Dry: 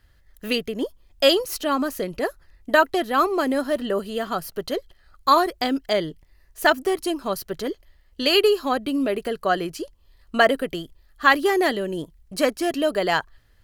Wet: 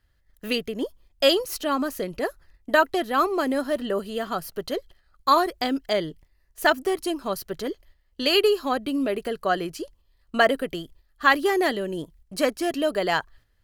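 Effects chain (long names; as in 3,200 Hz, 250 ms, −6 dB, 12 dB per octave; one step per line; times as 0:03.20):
noise gate −49 dBFS, range −7 dB
level −2 dB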